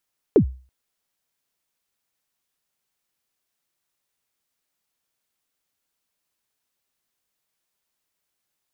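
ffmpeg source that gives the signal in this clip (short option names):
-f lavfi -i "aevalsrc='0.447*pow(10,-3*t/0.37)*sin(2*PI*(490*0.091/log(64/490)*(exp(log(64/490)*min(t,0.091)/0.091)-1)+64*max(t-0.091,0)))':d=0.33:s=44100"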